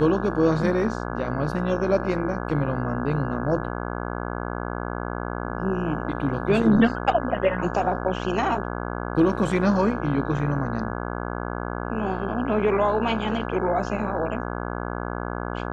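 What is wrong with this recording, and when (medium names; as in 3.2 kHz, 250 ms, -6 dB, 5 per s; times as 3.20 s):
buzz 60 Hz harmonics 28 -30 dBFS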